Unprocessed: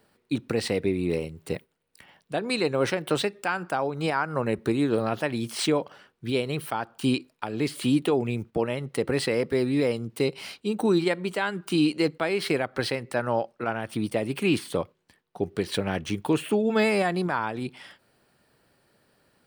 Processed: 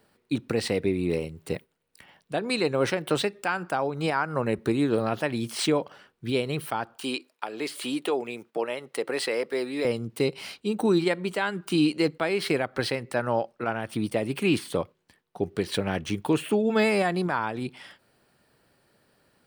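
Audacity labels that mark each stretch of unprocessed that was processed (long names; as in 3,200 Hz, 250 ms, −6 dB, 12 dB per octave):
6.960000	9.850000	high-pass filter 420 Hz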